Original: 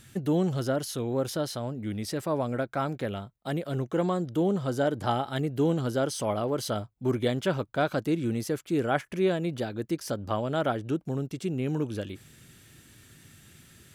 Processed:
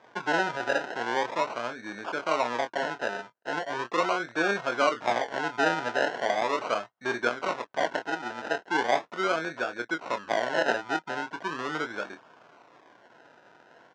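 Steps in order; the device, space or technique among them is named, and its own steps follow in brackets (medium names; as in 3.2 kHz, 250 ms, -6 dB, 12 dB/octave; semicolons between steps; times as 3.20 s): 7.27–8.51 s: tilt shelf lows -6 dB, about 1.1 kHz; doubling 25 ms -8 dB; circuit-bent sampling toy (decimation with a swept rate 31×, swing 60% 0.39 Hz; cabinet simulation 410–5700 Hz, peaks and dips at 690 Hz +4 dB, 980 Hz +6 dB, 1.5 kHz +10 dB, 4.5 kHz -4 dB)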